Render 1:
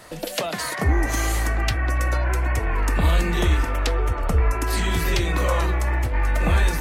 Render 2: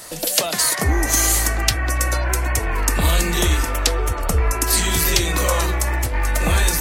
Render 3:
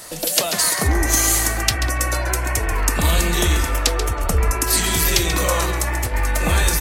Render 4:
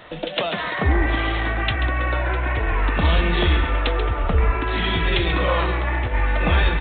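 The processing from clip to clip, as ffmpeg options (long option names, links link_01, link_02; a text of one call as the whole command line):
ffmpeg -i in.wav -af "bass=frequency=250:gain=-2,treble=frequency=4000:gain=13,volume=2.5dB" out.wav
ffmpeg -i in.wav -af "aecho=1:1:136:0.316" out.wav
ffmpeg -i in.wav -ar 8000 -c:a adpcm_g726 -b:a 40k out.wav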